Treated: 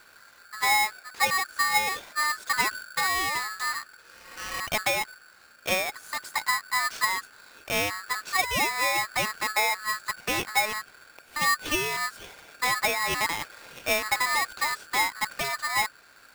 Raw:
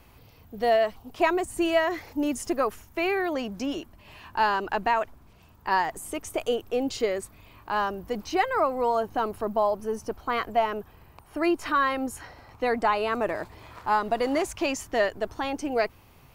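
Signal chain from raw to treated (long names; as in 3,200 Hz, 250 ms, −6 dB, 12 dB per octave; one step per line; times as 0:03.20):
0:02.53–0:03.07: low-shelf EQ 170 Hz +10 dB
0:04.04–0:04.57: healed spectral selection 280–3,100 Hz both
treble cut that deepens with the level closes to 860 Hz, closed at −19.5 dBFS
ring modulator with a square carrier 1,500 Hz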